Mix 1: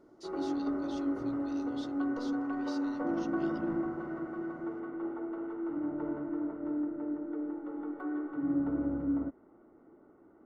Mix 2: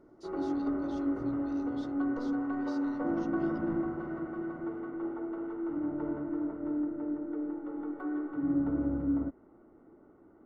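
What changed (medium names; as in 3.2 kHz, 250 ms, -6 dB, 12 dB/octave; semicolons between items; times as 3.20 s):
speech -6.5 dB; master: add bass shelf 130 Hz +7.5 dB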